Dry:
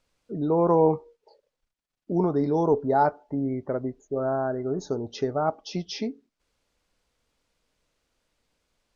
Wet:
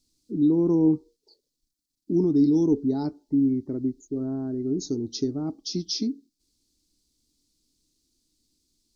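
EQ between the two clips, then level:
drawn EQ curve 180 Hz 0 dB, 310 Hz +9 dB, 550 Hz −19 dB, 950 Hz −18 dB, 1,500 Hz −21 dB, 2,900 Hz −9 dB, 4,300 Hz +8 dB
0.0 dB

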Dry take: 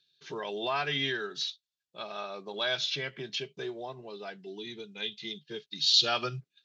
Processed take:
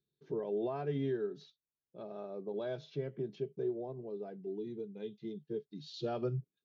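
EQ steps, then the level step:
drawn EQ curve 440 Hz 0 dB, 1,100 Hz −18 dB, 2,900 Hz −29 dB
+2.5 dB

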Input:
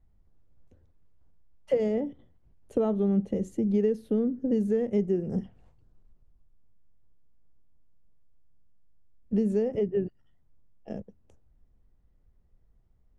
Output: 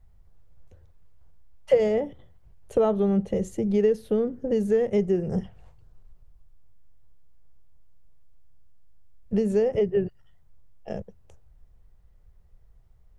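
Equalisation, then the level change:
parametric band 260 Hz −13.5 dB 0.82 octaves
+8.5 dB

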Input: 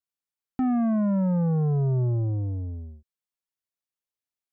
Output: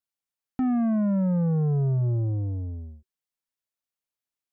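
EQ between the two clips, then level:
notch filter 380 Hz, Q 12
dynamic equaliser 910 Hz, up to −5 dB, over −46 dBFS, Q 2.1
0.0 dB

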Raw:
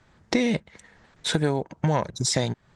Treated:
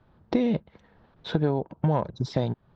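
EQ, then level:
low-pass filter 4,100 Hz 12 dB per octave
high-frequency loss of the air 230 metres
parametric band 2,000 Hz −11 dB 0.83 octaves
0.0 dB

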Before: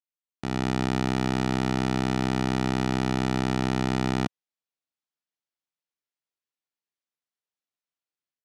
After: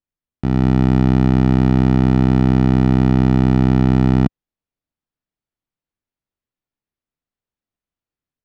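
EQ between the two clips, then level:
RIAA equalisation playback
parametric band 260 Hz +2 dB 0.65 octaves
+3.5 dB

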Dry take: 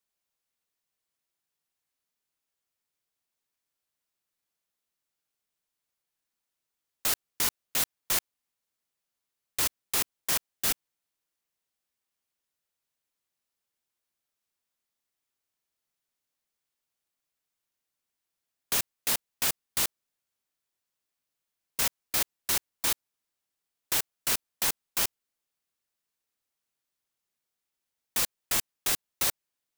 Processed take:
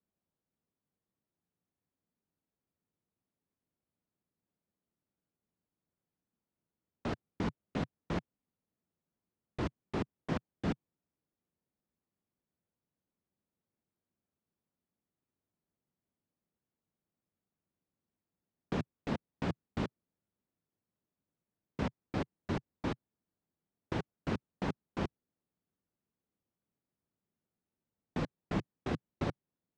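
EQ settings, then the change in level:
resonant band-pass 150 Hz, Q 1.2
high-frequency loss of the air 130 metres
parametric band 130 Hz −7 dB 0.39 octaves
+15.0 dB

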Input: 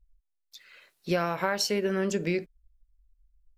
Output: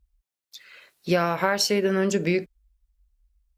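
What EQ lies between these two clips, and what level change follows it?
high-pass filter 43 Hz
+5.0 dB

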